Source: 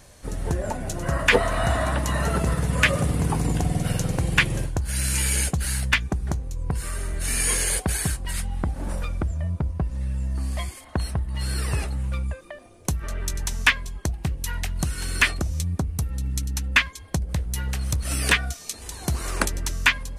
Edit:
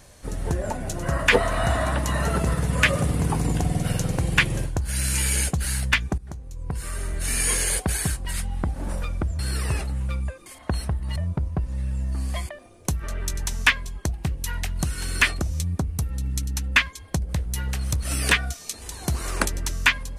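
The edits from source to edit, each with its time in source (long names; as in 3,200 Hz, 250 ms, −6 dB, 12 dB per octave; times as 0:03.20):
0:06.18–0:07.04: fade in, from −15 dB
0:09.39–0:10.72: swap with 0:11.42–0:12.49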